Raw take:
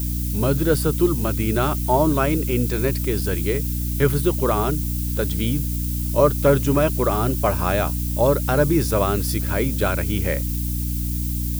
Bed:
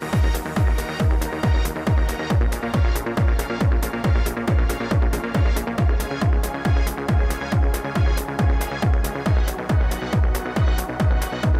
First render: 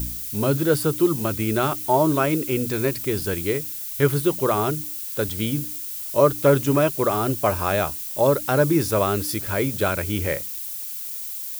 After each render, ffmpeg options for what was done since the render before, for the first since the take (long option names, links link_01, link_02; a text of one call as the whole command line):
ffmpeg -i in.wav -af "bandreject=frequency=60:width_type=h:width=4,bandreject=frequency=120:width_type=h:width=4,bandreject=frequency=180:width_type=h:width=4,bandreject=frequency=240:width_type=h:width=4,bandreject=frequency=300:width_type=h:width=4" out.wav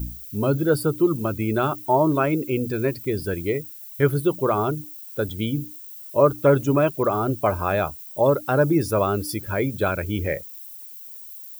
ffmpeg -i in.wav -af "afftdn=noise_reduction=14:noise_floor=-32" out.wav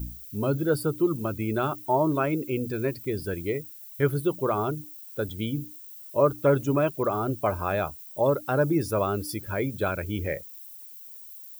ffmpeg -i in.wav -af "volume=-4.5dB" out.wav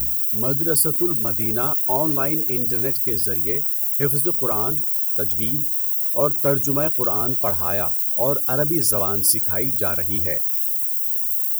ffmpeg -i in.wav -af "aexciter=amount=5.6:drive=8.4:freq=4800" out.wav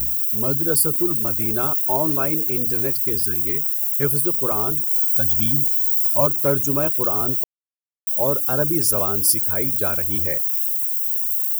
ffmpeg -i in.wav -filter_complex "[0:a]asettb=1/sr,asplit=3[link_01][link_02][link_03];[link_01]atrim=end=3.194[link_04];[link_02]atrim=start=3.19:end=4,asetpts=PTS-STARTPTS,afade=type=in:duration=0.004:curve=qsin,afade=type=out:start_time=0.806:duration=0.004:curve=qsin,asuperstop=centerf=640:order=12:qfactor=1.1[link_05];[link_03]atrim=start=3.996[link_06];[link_04][link_05]acrossfade=duration=0.004:curve1=hsin:curve2=qsin[link_07];[link_07][link_06]acrossfade=duration=0.004:curve1=qsin:curve2=hsin,asettb=1/sr,asplit=3[link_08][link_09][link_10];[link_08]atrim=end=4.904[link_11];[link_09]atrim=start=4.9:end=6.27,asetpts=PTS-STARTPTS,afade=type=in:duration=0.004:curve=qsin,afade=type=out:start_time=1.366:duration=0.004:curve=qsin,aecho=1:1:1.2:1,atrim=end_sample=60417[link_12];[link_10]atrim=start=6.266[link_13];[link_11][link_12]acrossfade=duration=0.004:curve1=hsin:curve2=qsin[link_14];[link_14][link_13]acrossfade=duration=0.004:curve1=qsin:curve2=hsin,asplit=3[link_15][link_16][link_17];[link_15]atrim=end=7.44,asetpts=PTS-STARTPTS,afade=type=out:start_time=7.436:duration=0.004:curve=hsin[link_18];[link_16]atrim=start=7.44:end=8.07,asetpts=PTS-STARTPTS,volume=0[link_19];[link_17]atrim=start=8.07,asetpts=PTS-STARTPTS,afade=type=in:duration=0.004:curve=hsin[link_20];[link_18][link_19][link_20]concat=n=3:v=0:a=1" out.wav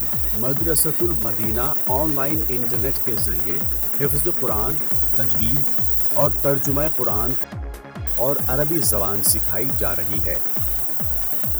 ffmpeg -i in.wav -i bed.wav -filter_complex "[1:a]volume=-11.5dB[link_01];[0:a][link_01]amix=inputs=2:normalize=0" out.wav